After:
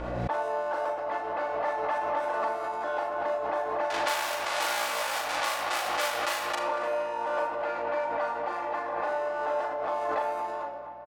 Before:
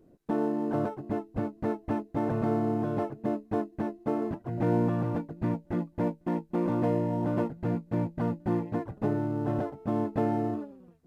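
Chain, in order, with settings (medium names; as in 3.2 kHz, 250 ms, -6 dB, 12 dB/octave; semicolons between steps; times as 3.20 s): 3.90–6.55 s: square wave that keeps the level; high-pass 670 Hz 24 dB/octave; level-controlled noise filter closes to 2.6 kHz, open at -31 dBFS; compression 6:1, threshold -38 dBFS, peak gain reduction 13 dB; hum 60 Hz, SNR 33 dB; doubling 39 ms -4 dB; filtered feedback delay 235 ms, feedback 71%, low-pass 2.8 kHz, level -11 dB; simulated room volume 3900 m³, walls furnished, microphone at 2.4 m; swell ahead of each attack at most 25 dB/s; trim +8.5 dB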